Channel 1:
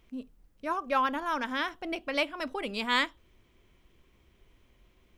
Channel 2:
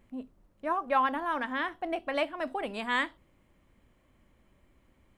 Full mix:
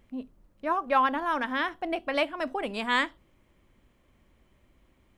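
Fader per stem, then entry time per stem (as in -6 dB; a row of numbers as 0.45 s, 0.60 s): -7.0 dB, 0.0 dB; 0.00 s, 0.00 s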